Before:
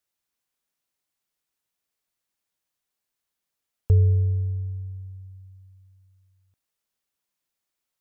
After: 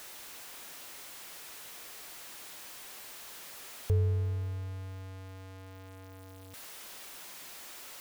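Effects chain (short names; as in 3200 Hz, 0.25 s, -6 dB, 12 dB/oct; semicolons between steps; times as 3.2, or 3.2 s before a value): zero-crossing step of -35.5 dBFS; tone controls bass -8 dB, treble -3 dB; gain -2.5 dB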